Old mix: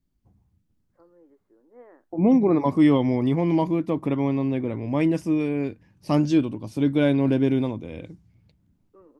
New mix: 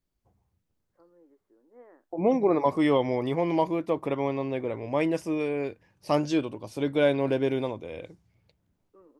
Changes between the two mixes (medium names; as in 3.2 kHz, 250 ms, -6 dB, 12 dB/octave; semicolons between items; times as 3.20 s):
first voice -3.5 dB; second voice: add resonant low shelf 350 Hz -8 dB, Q 1.5